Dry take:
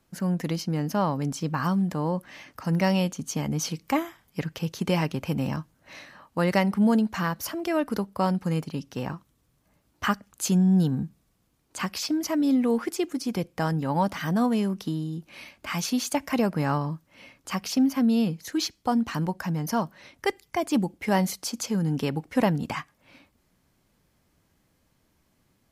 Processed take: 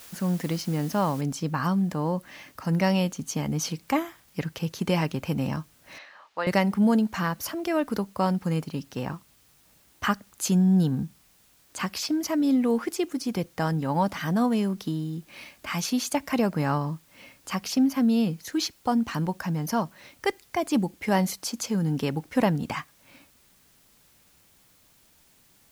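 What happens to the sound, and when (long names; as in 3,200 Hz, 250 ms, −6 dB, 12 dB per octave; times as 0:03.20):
0:01.21: noise floor change −47 dB −61 dB
0:05.98–0:06.47: three-way crossover with the lows and the highs turned down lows −23 dB, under 470 Hz, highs −24 dB, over 5,200 Hz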